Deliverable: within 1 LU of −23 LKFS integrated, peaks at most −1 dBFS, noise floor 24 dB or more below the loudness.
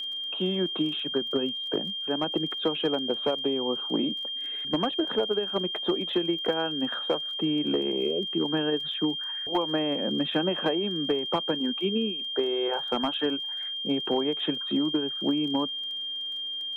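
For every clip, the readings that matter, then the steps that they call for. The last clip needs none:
crackle rate 24 per second; interfering tone 3,200 Hz; level of the tone −31 dBFS; integrated loudness −27.5 LKFS; sample peak −15.0 dBFS; target loudness −23.0 LKFS
→ click removal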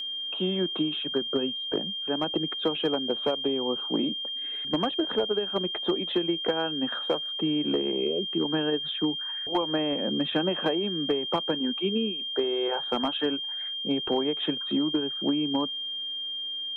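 crackle rate 0.060 per second; interfering tone 3,200 Hz; level of the tone −31 dBFS
→ notch filter 3,200 Hz, Q 30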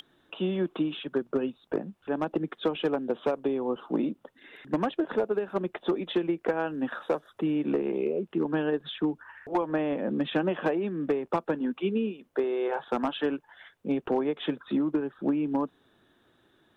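interfering tone none found; integrated loudness −30.0 LKFS; sample peak −15.5 dBFS; target loudness −23.0 LKFS
→ level +7 dB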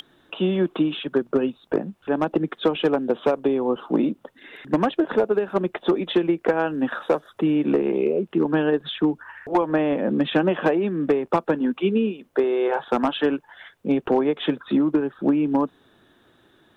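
integrated loudness −23.0 LKFS; sample peak −8.5 dBFS; background noise floor −60 dBFS

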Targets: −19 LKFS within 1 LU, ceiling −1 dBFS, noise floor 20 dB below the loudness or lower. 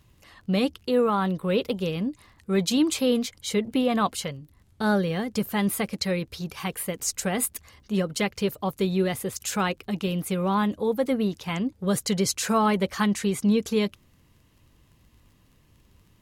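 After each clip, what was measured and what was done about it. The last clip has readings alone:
crackle rate 21 per second; integrated loudness −26.0 LKFS; sample peak −12.0 dBFS; target loudness −19.0 LKFS
→ click removal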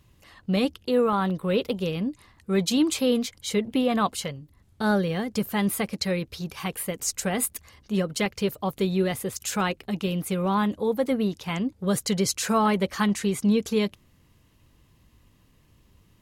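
crackle rate 0.25 per second; integrated loudness −26.0 LKFS; sample peak −12.0 dBFS; target loudness −19.0 LKFS
→ level +7 dB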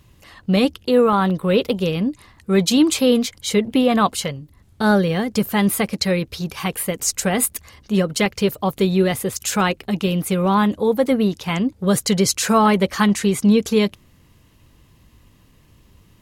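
integrated loudness −19.0 LKFS; sample peak −5.0 dBFS; background noise floor −54 dBFS

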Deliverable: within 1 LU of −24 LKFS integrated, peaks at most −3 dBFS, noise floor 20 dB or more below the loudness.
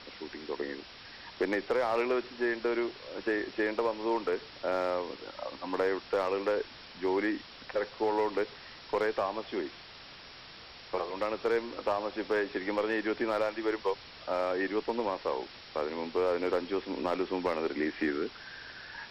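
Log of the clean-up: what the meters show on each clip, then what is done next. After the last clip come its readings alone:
share of clipped samples 0.3%; peaks flattened at −21.0 dBFS; background noise floor −50 dBFS; target noise floor −53 dBFS; integrated loudness −32.5 LKFS; sample peak −21.0 dBFS; target loudness −24.0 LKFS
→ clipped peaks rebuilt −21 dBFS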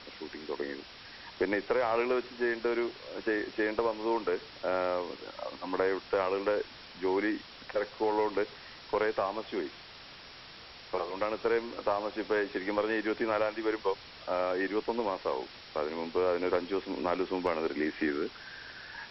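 share of clipped samples 0.0%; background noise floor −50 dBFS; target noise floor −53 dBFS
→ broadband denoise 6 dB, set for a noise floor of −50 dBFS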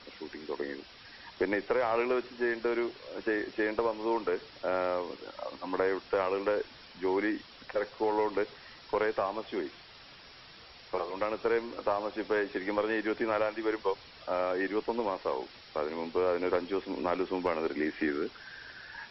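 background noise floor −53 dBFS; integrated loudness −32.5 LKFS; sample peak −14.0 dBFS; target loudness −24.0 LKFS
→ level +8.5 dB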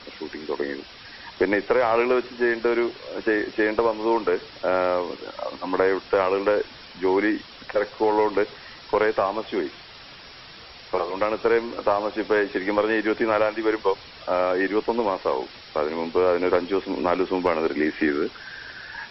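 integrated loudness −24.0 LKFS; sample peak −5.5 dBFS; background noise floor −44 dBFS

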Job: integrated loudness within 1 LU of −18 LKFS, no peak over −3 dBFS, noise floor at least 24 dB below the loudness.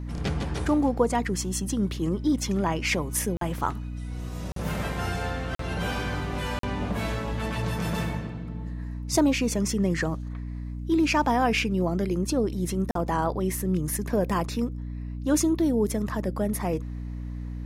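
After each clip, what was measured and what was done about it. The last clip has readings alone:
number of dropouts 5; longest dropout 43 ms; mains hum 60 Hz; hum harmonics up to 300 Hz; level of the hum −31 dBFS; integrated loudness −27.5 LKFS; sample peak −9.5 dBFS; target loudness −18.0 LKFS
→ repair the gap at 0:03.37/0:04.52/0:05.55/0:06.59/0:12.91, 43 ms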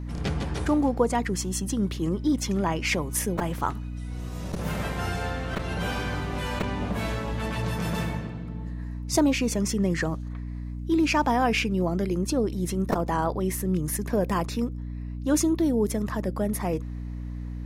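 number of dropouts 0; mains hum 60 Hz; hum harmonics up to 300 Hz; level of the hum −31 dBFS
→ mains-hum notches 60/120/180/240/300 Hz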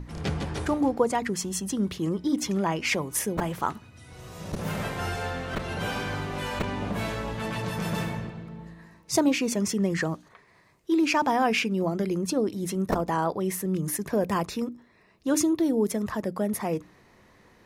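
mains hum none found; integrated loudness −28.0 LKFS; sample peak −9.0 dBFS; target loudness −18.0 LKFS
→ level +10 dB
brickwall limiter −3 dBFS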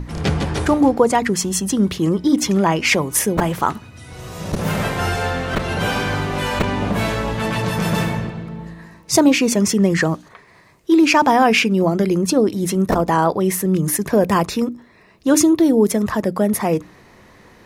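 integrated loudness −18.0 LKFS; sample peak −3.0 dBFS; background noise floor −49 dBFS

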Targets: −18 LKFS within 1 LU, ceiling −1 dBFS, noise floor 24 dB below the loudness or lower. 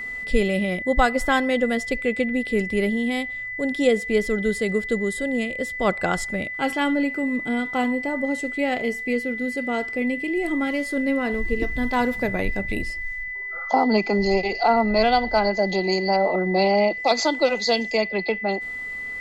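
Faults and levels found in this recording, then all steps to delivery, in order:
interfering tone 2,000 Hz; level of the tone −29 dBFS; integrated loudness −23.0 LKFS; sample peak −5.0 dBFS; target loudness −18.0 LKFS
→ notch filter 2,000 Hz, Q 30
level +5 dB
brickwall limiter −1 dBFS

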